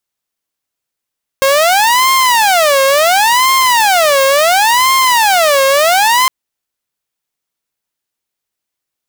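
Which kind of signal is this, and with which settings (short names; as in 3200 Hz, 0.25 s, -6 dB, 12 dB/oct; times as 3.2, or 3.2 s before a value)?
siren wail 539–1060 Hz 0.71/s saw -5 dBFS 4.86 s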